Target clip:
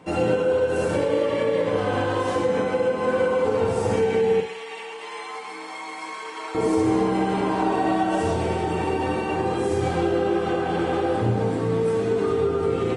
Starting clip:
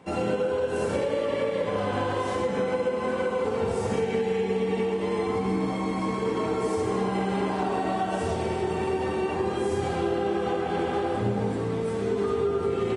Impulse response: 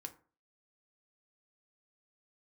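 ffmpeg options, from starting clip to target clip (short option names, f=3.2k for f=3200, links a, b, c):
-filter_complex "[0:a]asettb=1/sr,asplit=3[a][b][c];[a]atrim=end=4.404[d];[b]atrim=start=4.4:end=6.55,asetpts=PTS-STARTPTS,afade=t=in:d=0.004:c=qsin,afade=t=out:st=2.146:d=0.004:c=qsin,highpass=1.2k[e];[c]atrim=start=6.546[f];[d][e]acrossfade=d=0.004:c1=hsin:c2=qsin[g];[g][f]acrossfade=d=0.004:c1=qsin:c2=hsin[h];[1:a]atrim=start_sample=2205[i];[h][i]afir=irnorm=-1:irlink=0,volume=8dB"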